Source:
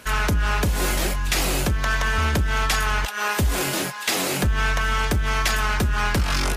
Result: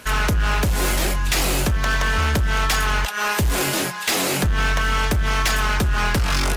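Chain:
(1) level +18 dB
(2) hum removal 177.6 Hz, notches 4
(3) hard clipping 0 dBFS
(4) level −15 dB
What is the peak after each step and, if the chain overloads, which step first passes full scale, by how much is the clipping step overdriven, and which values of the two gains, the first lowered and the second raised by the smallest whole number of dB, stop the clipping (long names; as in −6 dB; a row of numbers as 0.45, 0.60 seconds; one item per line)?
+6.0, +6.0, 0.0, −15.0 dBFS
step 1, 6.0 dB
step 1 +12 dB, step 4 −9 dB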